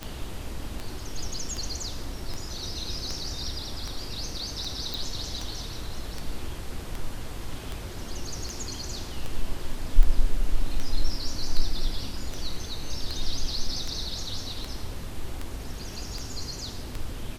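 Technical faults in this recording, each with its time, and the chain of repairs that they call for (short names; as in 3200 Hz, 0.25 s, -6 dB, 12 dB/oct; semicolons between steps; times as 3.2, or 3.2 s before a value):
tick 78 rpm -18 dBFS
4.94 pop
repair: de-click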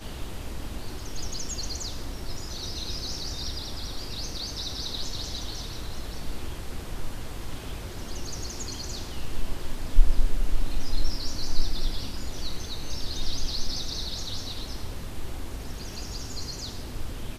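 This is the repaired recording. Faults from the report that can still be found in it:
none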